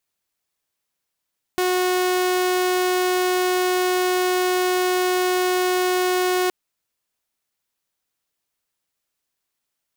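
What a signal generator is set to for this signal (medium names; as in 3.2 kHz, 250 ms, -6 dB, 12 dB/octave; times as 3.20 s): tone saw 365 Hz -15.5 dBFS 4.92 s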